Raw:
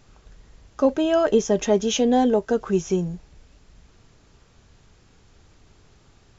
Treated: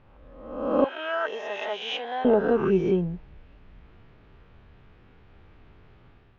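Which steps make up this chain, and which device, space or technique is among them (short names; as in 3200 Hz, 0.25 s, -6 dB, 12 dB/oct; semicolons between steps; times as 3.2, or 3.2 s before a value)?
spectral swells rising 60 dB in 1.01 s; 0.84–2.25 Chebyshev high-pass 1200 Hz, order 2; action camera in a waterproof case (LPF 2900 Hz 24 dB/oct; AGC gain up to 5 dB; gain -6 dB; AAC 48 kbps 44100 Hz)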